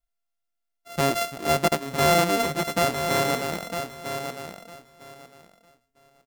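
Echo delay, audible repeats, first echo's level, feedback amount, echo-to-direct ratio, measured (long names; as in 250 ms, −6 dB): 954 ms, 2, −8.0 dB, 19%, −8.0 dB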